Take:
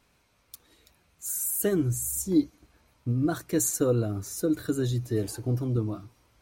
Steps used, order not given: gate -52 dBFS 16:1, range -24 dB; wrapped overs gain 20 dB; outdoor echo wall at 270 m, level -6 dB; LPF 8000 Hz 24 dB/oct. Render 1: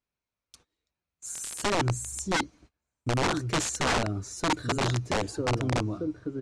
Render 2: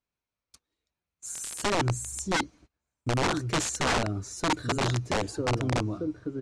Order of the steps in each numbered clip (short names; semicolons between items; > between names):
outdoor echo > gate > wrapped overs > LPF; outdoor echo > wrapped overs > LPF > gate